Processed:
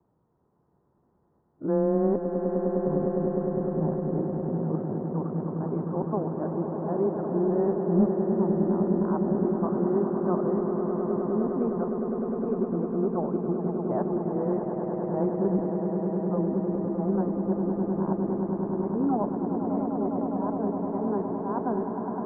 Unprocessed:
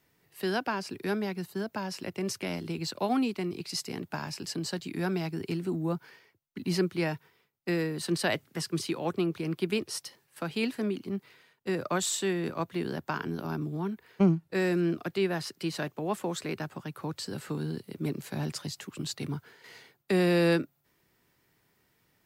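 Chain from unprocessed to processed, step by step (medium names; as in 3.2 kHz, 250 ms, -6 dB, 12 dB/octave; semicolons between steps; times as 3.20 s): reverse the whole clip; in parallel at -3 dB: saturation -28 dBFS, distortion -9 dB; on the sum: steep low-pass 1.1 kHz 36 dB/octave; on a send: echo with a slow build-up 102 ms, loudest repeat 8, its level -9 dB; on the sum: frequency shift +13 Hz; trim -2 dB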